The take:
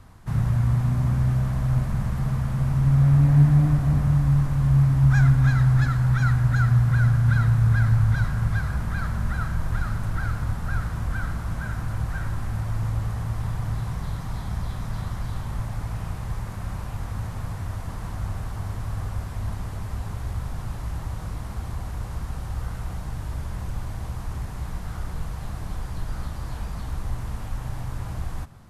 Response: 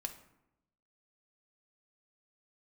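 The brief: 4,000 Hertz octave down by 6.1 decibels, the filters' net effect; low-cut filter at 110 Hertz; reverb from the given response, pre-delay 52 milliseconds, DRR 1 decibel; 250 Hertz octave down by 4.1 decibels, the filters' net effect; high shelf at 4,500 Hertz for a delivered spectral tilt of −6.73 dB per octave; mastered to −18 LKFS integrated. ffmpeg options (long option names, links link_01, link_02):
-filter_complex "[0:a]highpass=110,equalizer=frequency=250:width_type=o:gain=-8,equalizer=frequency=4000:width_type=o:gain=-3.5,highshelf=frequency=4500:gain=-8,asplit=2[link_01][link_02];[1:a]atrim=start_sample=2205,adelay=52[link_03];[link_02][link_03]afir=irnorm=-1:irlink=0,volume=0.5dB[link_04];[link_01][link_04]amix=inputs=2:normalize=0,volume=7.5dB"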